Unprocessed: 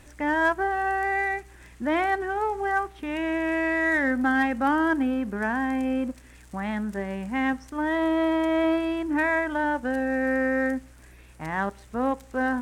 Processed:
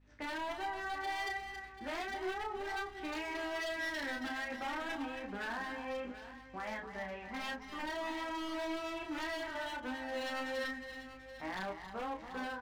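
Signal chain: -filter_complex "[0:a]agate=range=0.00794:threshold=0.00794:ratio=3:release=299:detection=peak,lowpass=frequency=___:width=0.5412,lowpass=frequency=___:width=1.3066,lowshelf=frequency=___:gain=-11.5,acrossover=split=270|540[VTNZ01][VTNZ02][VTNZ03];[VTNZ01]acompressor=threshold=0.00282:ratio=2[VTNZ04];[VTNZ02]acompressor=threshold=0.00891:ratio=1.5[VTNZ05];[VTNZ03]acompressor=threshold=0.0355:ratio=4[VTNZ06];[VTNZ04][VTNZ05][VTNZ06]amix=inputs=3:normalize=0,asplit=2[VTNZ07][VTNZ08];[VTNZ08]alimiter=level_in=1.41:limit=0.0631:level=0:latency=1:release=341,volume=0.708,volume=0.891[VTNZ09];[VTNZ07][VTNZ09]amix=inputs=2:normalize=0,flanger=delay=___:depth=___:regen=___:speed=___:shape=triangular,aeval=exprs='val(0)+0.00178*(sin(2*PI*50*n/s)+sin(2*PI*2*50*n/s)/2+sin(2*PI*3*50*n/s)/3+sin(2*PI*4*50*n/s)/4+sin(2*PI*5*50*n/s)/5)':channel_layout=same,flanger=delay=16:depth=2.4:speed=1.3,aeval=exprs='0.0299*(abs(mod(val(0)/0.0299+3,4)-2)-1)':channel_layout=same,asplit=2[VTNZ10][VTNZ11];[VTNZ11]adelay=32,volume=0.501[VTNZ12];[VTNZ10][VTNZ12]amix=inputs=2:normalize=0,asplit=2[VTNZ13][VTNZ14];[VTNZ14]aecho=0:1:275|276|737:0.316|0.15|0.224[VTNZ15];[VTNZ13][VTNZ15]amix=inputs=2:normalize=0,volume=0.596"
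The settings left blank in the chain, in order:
4.9k, 4.9k, 180, 9.5, 2.4, 43, 0.35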